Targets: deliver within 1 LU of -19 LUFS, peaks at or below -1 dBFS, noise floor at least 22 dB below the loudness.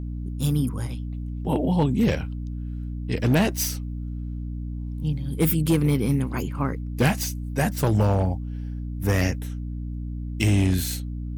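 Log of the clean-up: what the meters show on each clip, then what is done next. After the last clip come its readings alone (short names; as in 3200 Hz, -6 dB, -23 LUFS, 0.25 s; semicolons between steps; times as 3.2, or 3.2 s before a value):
clipped 0.7%; flat tops at -13.5 dBFS; hum 60 Hz; harmonics up to 300 Hz; hum level -28 dBFS; loudness -25.5 LUFS; peak -13.5 dBFS; loudness target -19.0 LUFS
-> clip repair -13.5 dBFS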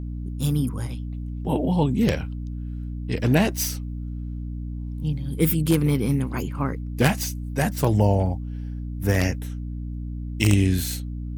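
clipped 0.0%; hum 60 Hz; harmonics up to 300 Hz; hum level -28 dBFS
-> notches 60/120/180/240/300 Hz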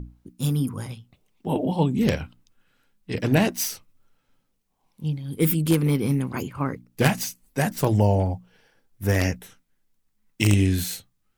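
hum none; loudness -24.0 LUFS; peak -4.0 dBFS; loudness target -19.0 LUFS
-> gain +5 dB; limiter -1 dBFS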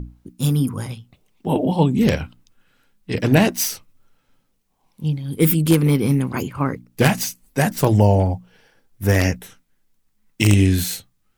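loudness -19.5 LUFS; peak -1.0 dBFS; noise floor -67 dBFS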